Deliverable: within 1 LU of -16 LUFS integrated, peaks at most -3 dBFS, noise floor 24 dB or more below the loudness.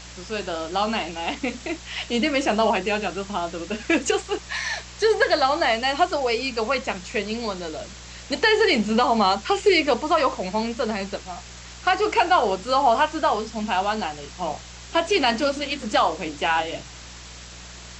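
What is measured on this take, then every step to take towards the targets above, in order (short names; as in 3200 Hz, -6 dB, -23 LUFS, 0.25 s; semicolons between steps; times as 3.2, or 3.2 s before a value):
hum 60 Hz; harmonics up to 180 Hz; hum level -42 dBFS; noise floor -41 dBFS; noise floor target -47 dBFS; loudness -23.0 LUFS; peak -6.0 dBFS; loudness target -16.0 LUFS
-> de-hum 60 Hz, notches 3; denoiser 6 dB, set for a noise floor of -41 dBFS; gain +7 dB; limiter -3 dBFS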